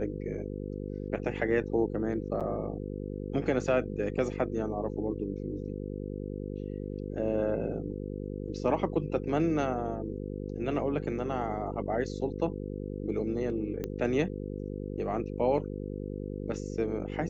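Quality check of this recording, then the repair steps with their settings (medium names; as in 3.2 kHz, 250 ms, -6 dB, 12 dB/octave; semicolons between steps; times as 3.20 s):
buzz 50 Hz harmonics 10 -37 dBFS
2.40–2.41 s: dropout 7 ms
13.84 s: pop -21 dBFS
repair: de-click; de-hum 50 Hz, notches 10; interpolate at 2.40 s, 7 ms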